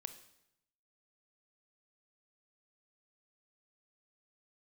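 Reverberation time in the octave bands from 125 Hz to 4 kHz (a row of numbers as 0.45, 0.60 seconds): 1.1, 0.90, 0.80, 0.80, 0.80, 0.75 seconds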